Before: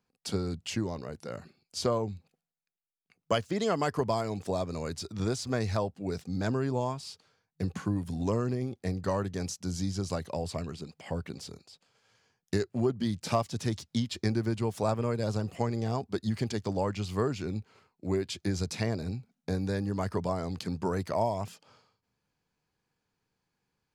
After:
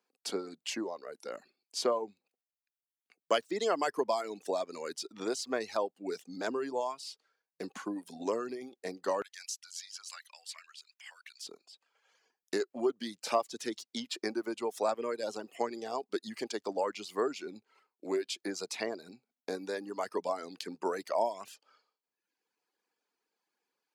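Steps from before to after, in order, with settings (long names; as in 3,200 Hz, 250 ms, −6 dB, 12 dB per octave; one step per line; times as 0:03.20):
reverb reduction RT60 1 s
high-pass filter 290 Hz 24 dB per octave, from 0:09.22 1,500 Hz, from 0:11.47 300 Hz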